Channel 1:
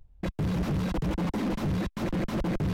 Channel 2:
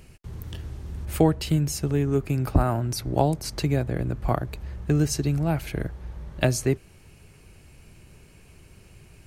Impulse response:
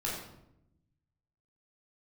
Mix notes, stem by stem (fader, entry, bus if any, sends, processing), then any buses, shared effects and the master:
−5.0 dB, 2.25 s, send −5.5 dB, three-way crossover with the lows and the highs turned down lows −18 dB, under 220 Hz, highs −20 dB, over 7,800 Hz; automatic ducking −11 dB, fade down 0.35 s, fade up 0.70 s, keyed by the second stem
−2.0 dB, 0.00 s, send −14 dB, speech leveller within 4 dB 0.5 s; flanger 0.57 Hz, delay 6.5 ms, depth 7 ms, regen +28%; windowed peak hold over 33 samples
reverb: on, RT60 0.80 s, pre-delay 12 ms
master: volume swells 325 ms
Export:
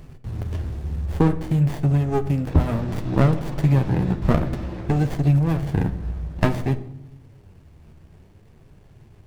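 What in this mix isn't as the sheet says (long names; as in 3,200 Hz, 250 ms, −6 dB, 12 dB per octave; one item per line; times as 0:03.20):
stem 2 −2.0 dB → +6.0 dB
master: missing volume swells 325 ms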